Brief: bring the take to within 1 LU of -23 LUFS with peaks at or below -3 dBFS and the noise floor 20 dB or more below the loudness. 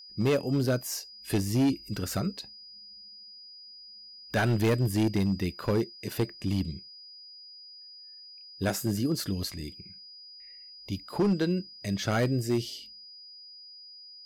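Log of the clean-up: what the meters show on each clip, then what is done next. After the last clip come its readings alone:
clipped 1.4%; flat tops at -20.0 dBFS; steady tone 4900 Hz; tone level -46 dBFS; loudness -29.5 LUFS; peak -20.0 dBFS; loudness target -23.0 LUFS
-> clip repair -20 dBFS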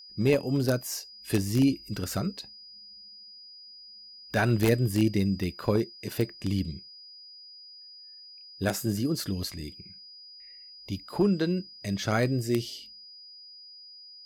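clipped 0.0%; steady tone 4900 Hz; tone level -46 dBFS
-> notch 4900 Hz, Q 30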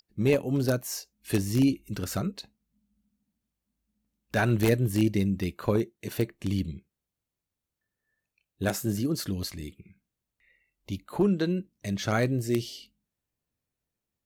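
steady tone none; loudness -28.5 LUFS; peak -11.0 dBFS; loudness target -23.0 LUFS
-> gain +5.5 dB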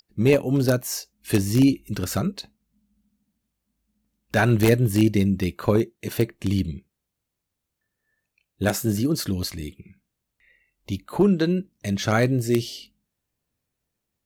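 loudness -23.0 LUFS; peak -5.5 dBFS; noise floor -82 dBFS

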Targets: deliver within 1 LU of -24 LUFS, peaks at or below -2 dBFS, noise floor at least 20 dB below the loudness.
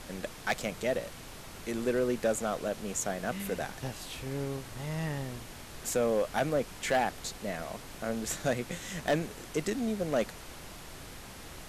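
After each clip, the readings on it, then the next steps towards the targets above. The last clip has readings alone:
clipped 0.4%; flat tops at -21.0 dBFS; noise floor -47 dBFS; noise floor target -54 dBFS; loudness -33.5 LUFS; peak -21.0 dBFS; loudness target -24.0 LUFS
-> clip repair -21 dBFS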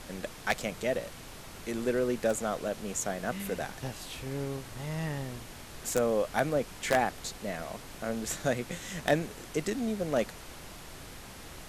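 clipped 0.0%; noise floor -47 dBFS; noise floor target -53 dBFS
-> noise print and reduce 6 dB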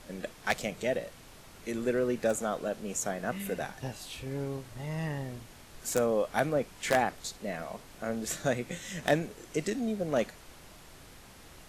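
noise floor -52 dBFS; noise floor target -53 dBFS
-> noise print and reduce 6 dB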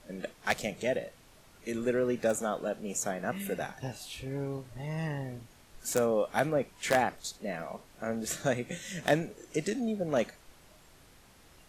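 noise floor -58 dBFS; loudness -33.0 LUFS; peak -12.0 dBFS; loudness target -24.0 LUFS
-> gain +9 dB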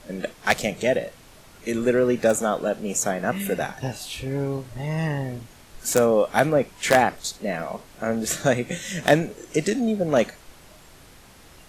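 loudness -24.0 LUFS; peak -3.0 dBFS; noise floor -49 dBFS

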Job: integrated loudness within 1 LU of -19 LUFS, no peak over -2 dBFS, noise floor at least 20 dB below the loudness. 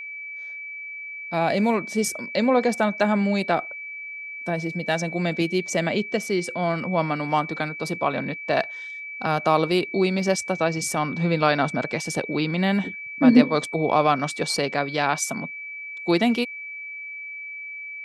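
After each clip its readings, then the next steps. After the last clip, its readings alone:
steady tone 2300 Hz; tone level -33 dBFS; loudness -24.0 LUFS; peak -3.5 dBFS; loudness target -19.0 LUFS
-> notch 2300 Hz, Q 30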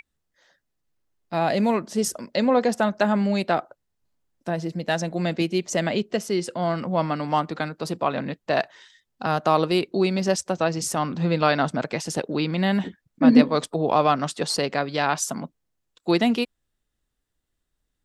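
steady tone none; loudness -23.5 LUFS; peak -3.0 dBFS; loudness target -19.0 LUFS
-> gain +4.5 dB; limiter -2 dBFS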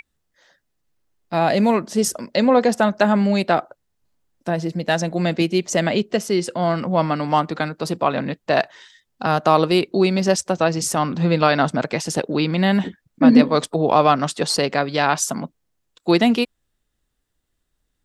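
loudness -19.5 LUFS; peak -2.0 dBFS; noise floor -74 dBFS

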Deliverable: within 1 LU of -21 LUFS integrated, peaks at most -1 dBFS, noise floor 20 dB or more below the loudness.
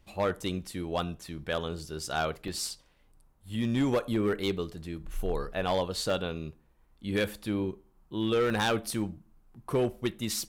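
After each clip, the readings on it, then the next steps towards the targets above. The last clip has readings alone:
clipped 0.8%; flat tops at -21.0 dBFS; dropouts 4; longest dropout 2.4 ms; loudness -31.5 LUFS; peak -21.0 dBFS; loudness target -21.0 LUFS
-> clip repair -21 dBFS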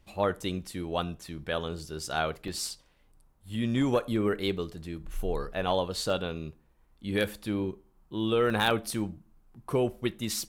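clipped 0.0%; dropouts 4; longest dropout 2.4 ms
-> interpolate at 2.48/3.55/6.1/8.5, 2.4 ms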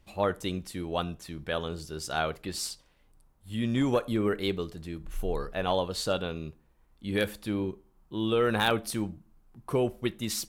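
dropouts 0; loudness -31.0 LUFS; peak -12.0 dBFS; loudness target -21.0 LUFS
-> gain +10 dB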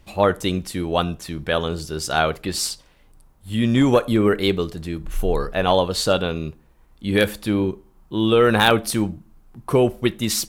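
loudness -21.0 LUFS; peak -2.0 dBFS; noise floor -54 dBFS

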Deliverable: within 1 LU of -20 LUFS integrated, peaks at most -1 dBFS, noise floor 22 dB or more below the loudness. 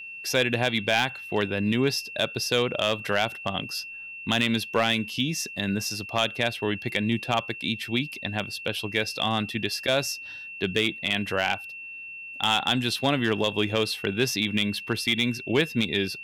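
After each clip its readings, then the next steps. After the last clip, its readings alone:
clipped 0.2%; flat tops at -13.5 dBFS; steady tone 2700 Hz; tone level -37 dBFS; loudness -26.0 LUFS; peak -13.5 dBFS; loudness target -20.0 LUFS
-> clip repair -13.5 dBFS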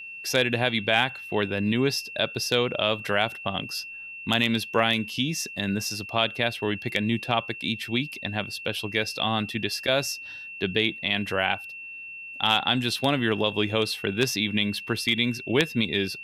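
clipped 0.0%; steady tone 2700 Hz; tone level -37 dBFS
-> notch 2700 Hz, Q 30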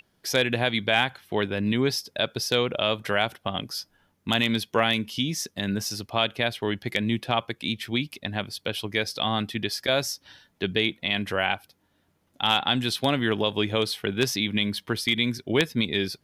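steady tone none; loudness -26.0 LUFS; peak -5.0 dBFS; loudness target -20.0 LUFS
-> gain +6 dB; limiter -1 dBFS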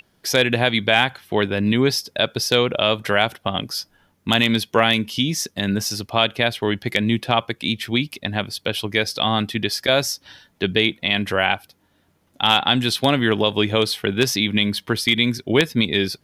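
loudness -20.0 LUFS; peak -1.0 dBFS; noise floor -63 dBFS

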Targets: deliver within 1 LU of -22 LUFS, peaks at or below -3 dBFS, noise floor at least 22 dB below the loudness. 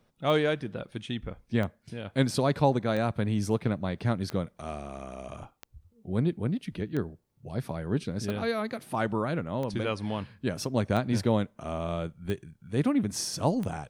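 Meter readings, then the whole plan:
clicks 11; loudness -30.0 LUFS; peak -10.0 dBFS; loudness target -22.0 LUFS
-> de-click; gain +8 dB; limiter -3 dBFS

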